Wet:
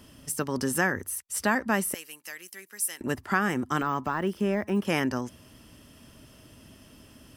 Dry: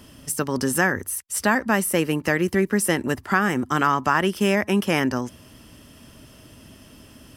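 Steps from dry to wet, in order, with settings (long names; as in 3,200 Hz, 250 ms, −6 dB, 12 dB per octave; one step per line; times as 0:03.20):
0:01.94–0:03.01: first difference
0:03.81–0:04.85: de-essing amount 100%
level −5 dB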